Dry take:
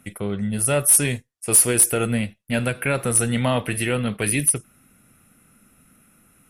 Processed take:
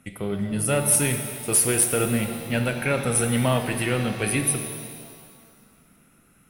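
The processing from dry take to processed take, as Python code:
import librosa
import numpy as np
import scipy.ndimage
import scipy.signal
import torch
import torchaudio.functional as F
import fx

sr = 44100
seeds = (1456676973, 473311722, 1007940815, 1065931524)

y = fx.high_shelf(x, sr, hz=11000.0, db=-8.0)
y = fx.rev_shimmer(y, sr, seeds[0], rt60_s=1.9, semitones=7, shimmer_db=-8, drr_db=6.0)
y = y * 10.0 ** (-2.0 / 20.0)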